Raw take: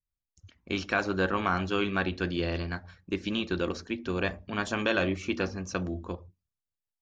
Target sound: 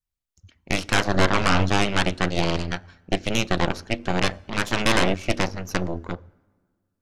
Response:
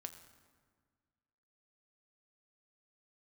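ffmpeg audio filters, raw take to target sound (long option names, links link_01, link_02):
-filter_complex "[0:a]asettb=1/sr,asplit=3[link_01][link_02][link_03];[link_01]atrim=end=1.144[link_04];[link_02]atrim=start=1.14:end=1.72,asetpts=PTS-STARTPTS,afade=type=in:duration=0.004:curve=qsin,afade=type=out:start_time=0.576:duration=0.004:curve=qsin,lowshelf=frequency=160:gain=7.5[link_05];[link_03]atrim=start=1.716[link_06];[link_04][link_05]acrossfade=duration=0.004:curve1=hsin:curve2=qsin[link_07];[link_07][link_06]acrossfade=duration=0.004:curve1=qsin:curve2=hsin,aeval=exprs='0.237*(cos(1*acos(clip(val(0)/0.237,-1,1)))-cos(1*PI/2))+0.119*(cos(6*acos(clip(val(0)/0.237,-1,1)))-cos(6*PI/2))':channel_layout=same,asplit=2[link_08][link_09];[1:a]atrim=start_sample=2205[link_10];[link_09][link_10]afir=irnorm=-1:irlink=0,volume=-11.5dB[link_11];[link_08][link_11]amix=inputs=2:normalize=0,volume=1dB"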